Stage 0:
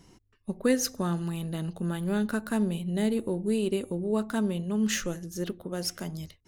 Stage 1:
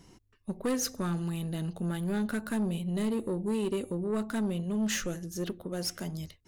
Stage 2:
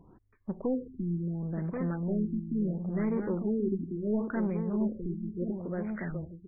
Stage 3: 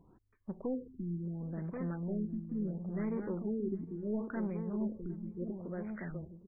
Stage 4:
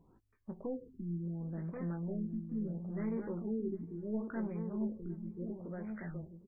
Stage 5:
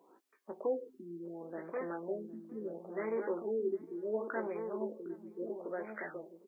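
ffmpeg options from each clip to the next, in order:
-af "asoftclip=type=tanh:threshold=0.0596"
-af "aecho=1:1:1082:0.473,afftfilt=real='re*lt(b*sr/1024,370*pow(2500/370,0.5+0.5*sin(2*PI*0.72*pts/sr)))':imag='im*lt(b*sr/1024,370*pow(2500/370,0.5+0.5*sin(2*PI*0.72*pts/sr)))':win_size=1024:overlap=0.75"
-filter_complex "[0:a]asplit=2[s0][s1];[s1]adelay=757,lowpass=f=1200:p=1,volume=0.0794,asplit=2[s2][s3];[s3]adelay=757,lowpass=f=1200:p=1,volume=0.26[s4];[s0][s2][s4]amix=inputs=3:normalize=0,volume=0.501"
-filter_complex "[0:a]asplit=2[s0][s1];[s1]adelay=18,volume=0.422[s2];[s0][s2]amix=inputs=2:normalize=0,volume=0.708"
-af "highpass=f=360:w=0.5412,highpass=f=360:w=1.3066,volume=2.66"

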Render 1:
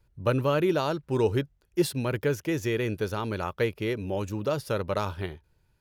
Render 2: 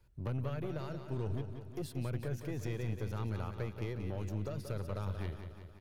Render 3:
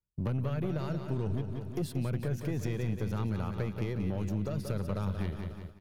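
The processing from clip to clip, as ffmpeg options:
-filter_complex "[0:a]acrossover=split=130[s0][s1];[s1]acompressor=threshold=0.01:ratio=5[s2];[s0][s2]amix=inputs=2:normalize=0,aeval=exprs='(tanh(44.7*val(0)+0.5)-tanh(0.5))/44.7':c=same,asplit=2[s3][s4];[s4]aecho=0:1:181|362|543|724|905|1086|1267:0.376|0.222|0.131|0.0772|0.0455|0.0269|0.0159[s5];[s3][s5]amix=inputs=2:normalize=0,volume=1.12"
-af "agate=range=0.0224:threshold=0.00501:ratio=3:detection=peak,equalizer=f=190:t=o:w=0.64:g=8,acompressor=threshold=0.0112:ratio=2,volume=2.37"

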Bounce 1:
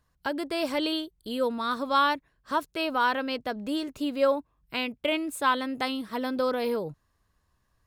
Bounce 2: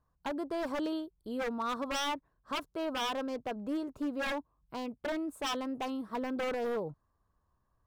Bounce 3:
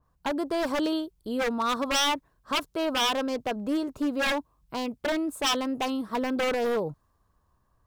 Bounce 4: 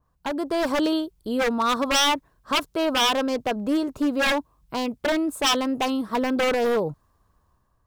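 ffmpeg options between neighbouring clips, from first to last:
-af "highshelf=f=1600:t=q:w=1.5:g=-11,aeval=exprs='0.0631*(abs(mod(val(0)/0.0631+3,4)-2)-1)':c=same,volume=0.596"
-af "adynamicequalizer=threshold=0.00316:dfrequency=2300:dqfactor=0.7:tfrequency=2300:tqfactor=0.7:attack=5:release=100:ratio=0.375:range=2.5:mode=boostabove:tftype=highshelf,volume=2.24"
-af "dynaudnorm=f=130:g=7:m=1.68"

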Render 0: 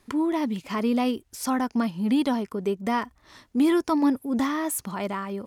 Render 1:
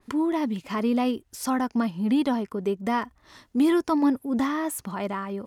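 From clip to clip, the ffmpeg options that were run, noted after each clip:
-af "bandreject=f=2300:w=25,adynamicequalizer=threshold=0.00447:dfrequency=3200:dqfactor=0.7:tfrequency=3200:tqfactor=0.7:attack=5:release=100:ratio=0.375:range=2.5:mode=cutabove:tftype=highshelf"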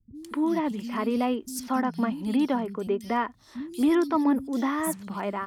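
-filter_complex "[0:a]acrossover=split=190|3700[s0][s1][s2];[s2]adelay=140[s3];[s1]adelay=230[s4];[s0][s4][s3]amix=inputs=3:normalize=0"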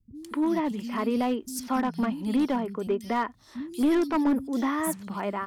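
-af "aeval=exprs='clip(val(0),-1,0.1)':c=same"

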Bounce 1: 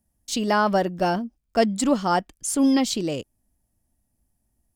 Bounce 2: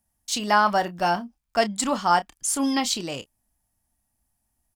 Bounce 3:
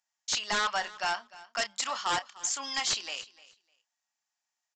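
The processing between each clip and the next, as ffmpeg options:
-filter_complex "[0:a]lowshelf=f=650:t=q:w=1.5:g=-7.5,asplit=2[s0][s1];[s1]adelay=29,volume=0.237[s2];[s0][s2]amix=inputs=2:normalize=0,volume=1.26"
-af "highpass=1300,aresample=16000,aeval=exprs='0.0794*(abs(mod(val(0)/0.0794+3,4)-2)-1)':c=same,aresample=44100,aecho=1:1:301|602:0.106|0.018"

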